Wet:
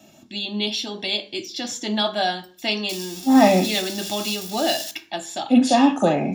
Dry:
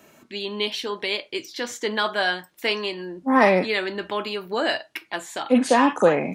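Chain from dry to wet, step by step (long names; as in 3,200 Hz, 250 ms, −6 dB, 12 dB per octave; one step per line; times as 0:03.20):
0:02.89–0:04.91: spike at every zero crossing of −20.5 dBFS
notch filter 400 Hz, Q 12
convolution reverb RT60 0.40 s, pre-delay 3 ms, DRR 11 dB
level −2.5 dB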